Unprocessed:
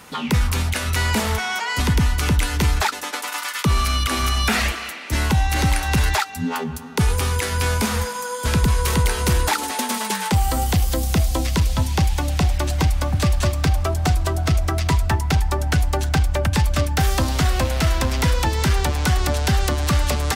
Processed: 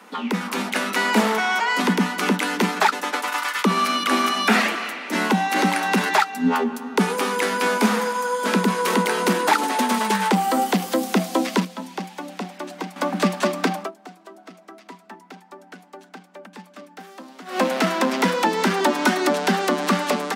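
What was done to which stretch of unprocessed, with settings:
11.65–12.96 gain -10 dB
13.76–17.61 dip -21 dB, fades 0.15 s
18.8–19.29 comb 3.2 ms, depth 78%
whole clip: Chebyshev high-pass 180 Hz, order 10; high shelf 3200 Hz -10.5 dB; AGC gain up to 6 dB

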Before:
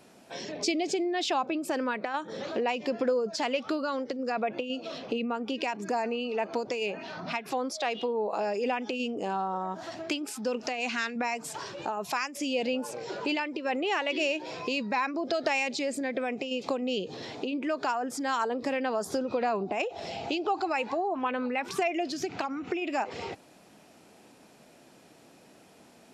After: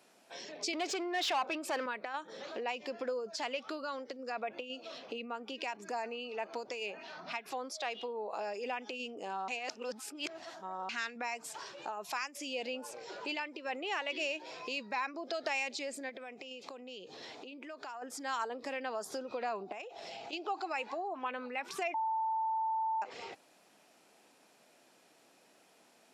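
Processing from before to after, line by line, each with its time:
0.73–1.86 overdrive pedal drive 17 dB, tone 3600 Hz, clips at -17.5 dBFS
9.48–10.89 reverse
16.09–18.02 compressor 4:1, threshold -34 dBFS
19.72–20.33 compressor, threshold -33 dBFS
21.94–23.02 bleep 888 Hz -23 dBFS
whole clip: HPF 630 Hz 6 dB/oct; gain -5.5 dB

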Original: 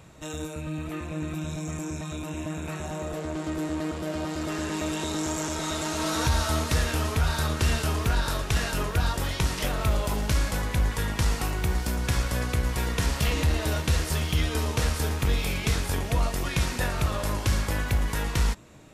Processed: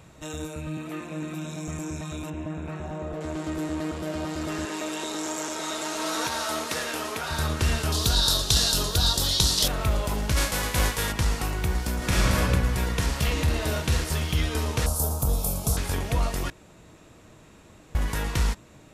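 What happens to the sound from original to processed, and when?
0.77–1.68 HPF 150 Hz 24 dB/oct
2.3–3.21 LPF 1500 Hz 6 dB/oct
4.65–7.31 HPF 310 Hz
7.92–9.68 resonant high shelf 3000 Hz +9.5 dB, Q 3
10.36–11.11 spectral whitening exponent 0.6
11.97–12.37 reverb throw, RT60 1.7 s, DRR -6.5 dB
13.43–14.04 doubler 47 ms -7.5 dB
14.86–15.77 EQ curve 180 Hz 0 dB, 370 Hz -6 dB, 640 Hz +5 dB, 1300 Hz -4 dB, 1900 Hz -26 dB, 4500 Hz -4 dB, 11000 Hz +12 dB
16.5–17.95 room tone

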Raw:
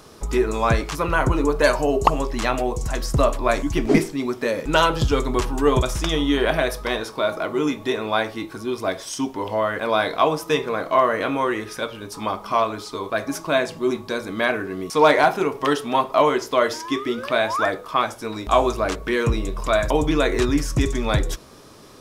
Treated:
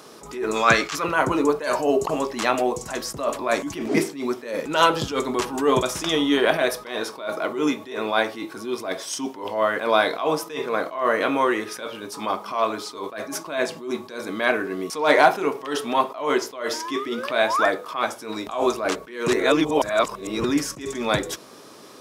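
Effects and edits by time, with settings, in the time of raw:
0.56–1.04 spectral gain 1100–7800 Hz +7 dB
19.28–20.44 reverse
whole clip: HPF 220 Hz 12 dB/oct; attack slew limiter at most 110 dB/s; gain +2 dB

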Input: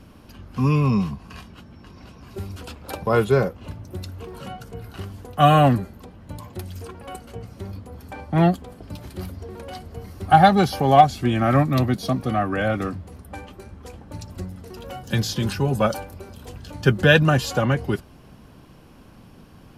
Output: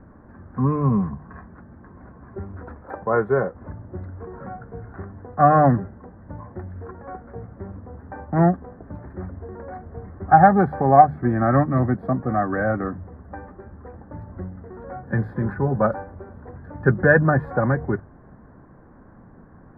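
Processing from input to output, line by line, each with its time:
2.81–3.55 low shelf 230 Hz -8.5 dB
whole clip: elliptic low-pass 1800 Hz, stop band 40 dB; notches 50/100/150 Hz; gain +1 dB

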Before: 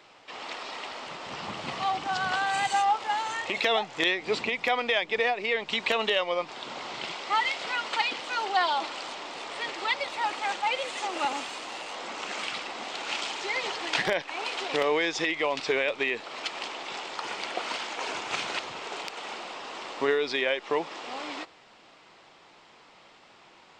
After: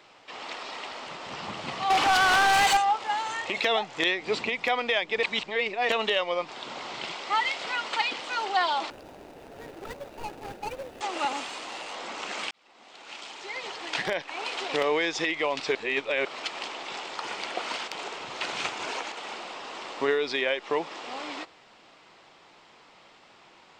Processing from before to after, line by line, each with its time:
1.9–2.77 overdrive pedal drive 25 dB, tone 5700 Hz, clips at -14.5 dBFS
5.23–5.89 reverse
8.9–11.01 median filter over 41 samples
12.51–14.6 fade in
15.75–16.25 reverse
17.88–19.12 reverse

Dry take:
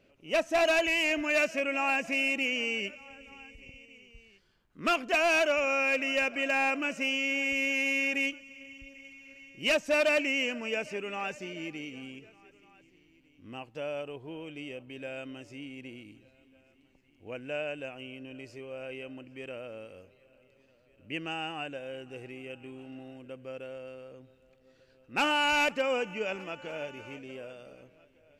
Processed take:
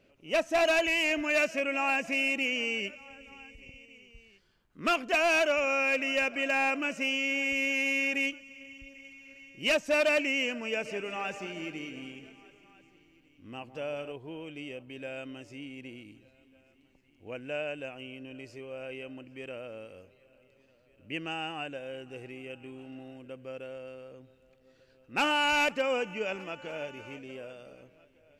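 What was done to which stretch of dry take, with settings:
10.64–14.12 split-band echo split 960 Hz, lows 0.157 s, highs 0.21 s, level -11.5 dB

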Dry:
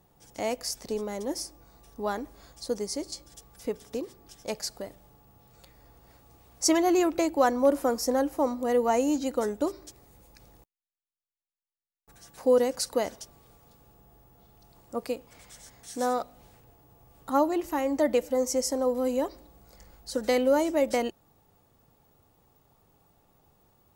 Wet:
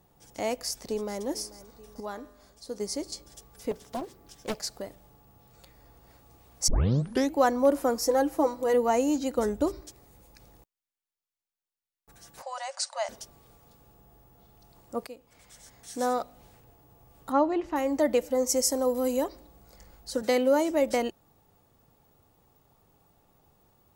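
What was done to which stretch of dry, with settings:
0.62–1.26 echo throw 0.44 s, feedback 65%, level -17.5 dB
2–2.8 resonator 86 Hz, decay 0.93 s
3.71–4.8 Doppler distortion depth 0.8 ms
6.68 tape start 0.66 s
8.01–8.74 comb 6.1 ms
9.38–9.81 bell 63 Hz +12.5 dB 2.3 oct
12.42–13.09 brick-wall FIR band-pass 540–9500 Hz
15.07–16.17 fade in equal-power, from -15 dB
17.32–17.76 LPF 3500 Hz
18.49–19.24 high shelf 6600 Hz +10 dB
20.22–20.71 HPF 93 Hz 24 dB/oct

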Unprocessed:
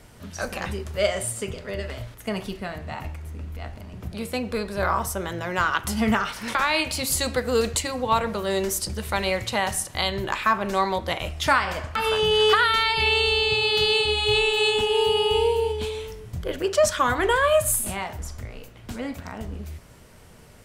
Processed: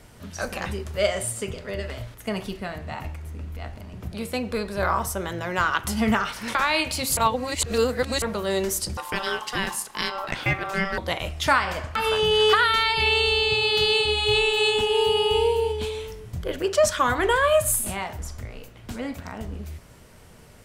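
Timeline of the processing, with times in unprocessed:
7.17–8.22 reverse
8.97–10.98 ring modulator 970 Hz

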